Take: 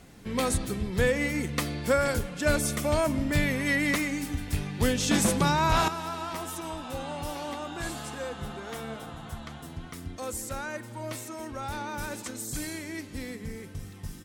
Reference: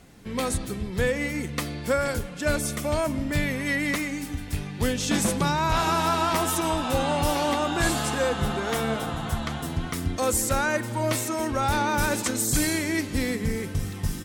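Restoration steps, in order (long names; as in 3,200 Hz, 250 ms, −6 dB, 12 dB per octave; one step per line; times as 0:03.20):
level correction +11 dB, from 0:05.88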